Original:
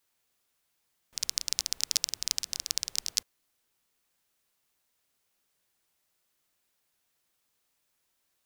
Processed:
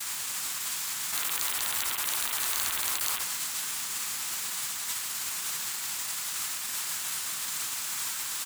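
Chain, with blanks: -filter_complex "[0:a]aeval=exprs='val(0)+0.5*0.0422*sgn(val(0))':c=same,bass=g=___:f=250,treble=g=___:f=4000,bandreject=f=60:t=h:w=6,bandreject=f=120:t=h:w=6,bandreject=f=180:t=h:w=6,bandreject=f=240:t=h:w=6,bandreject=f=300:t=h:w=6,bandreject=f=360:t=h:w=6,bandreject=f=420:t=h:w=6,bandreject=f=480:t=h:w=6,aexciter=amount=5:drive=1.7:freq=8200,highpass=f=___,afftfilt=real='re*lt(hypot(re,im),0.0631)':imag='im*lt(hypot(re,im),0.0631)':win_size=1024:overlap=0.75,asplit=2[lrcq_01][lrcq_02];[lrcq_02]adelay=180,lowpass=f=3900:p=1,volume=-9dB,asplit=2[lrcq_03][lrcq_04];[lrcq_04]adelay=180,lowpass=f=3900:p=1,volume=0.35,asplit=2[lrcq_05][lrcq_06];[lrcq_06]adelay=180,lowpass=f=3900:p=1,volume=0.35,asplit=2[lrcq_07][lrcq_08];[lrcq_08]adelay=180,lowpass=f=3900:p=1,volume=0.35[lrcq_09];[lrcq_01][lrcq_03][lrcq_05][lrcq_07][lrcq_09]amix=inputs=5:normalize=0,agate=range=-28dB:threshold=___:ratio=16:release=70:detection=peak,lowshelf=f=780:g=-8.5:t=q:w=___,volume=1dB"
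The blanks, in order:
7, 4, 120, -34dB, 1.5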